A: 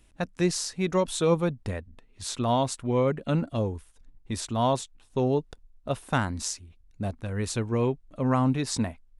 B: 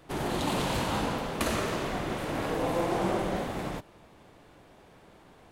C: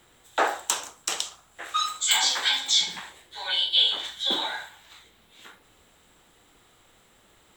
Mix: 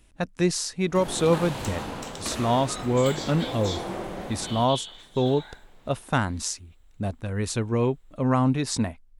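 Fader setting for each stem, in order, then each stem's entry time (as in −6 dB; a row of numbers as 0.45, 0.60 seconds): +2.0, −4.5, −14.5 decibels; 0.00, 0.85, 0.95 seconds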